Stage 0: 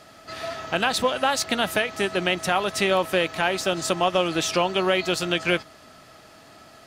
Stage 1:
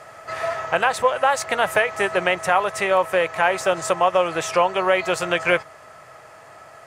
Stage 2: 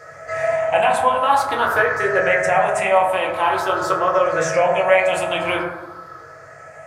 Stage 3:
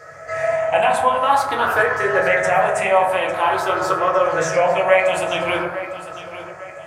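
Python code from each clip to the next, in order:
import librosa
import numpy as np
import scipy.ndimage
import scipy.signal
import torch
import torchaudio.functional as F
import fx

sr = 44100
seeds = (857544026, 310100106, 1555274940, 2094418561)

y1 = fx.graphic_eq_10(x, sr, hz=(125, 250, 500, 1000, 2000, 4000, 8000), db=(8, -9, 10, 10, 9, -6, 7))
y1 = fx.rider(y1, sr, range_db=3, speed_s=0.5)
y1 = y1 * librosa.db_to_amplitude(-5.5)
y2 = fx.spec_ripple(y1, sr, per_octave=0.56, drift_hz=0.47, depth_db=11)
y2 = fx.rev_fdn(y2, sr, rt60_s=1.2, lf_ratio=1.2, hf_ratio=0.3, size_ms=63.0, drr_db=-4.0)
y2 = y2 * librosa.db_to_amplitude(-4.5)
y3 = fx.echo_feedback(y2, sr, ms=852, feedback_pct=39, wet_db=-14.0)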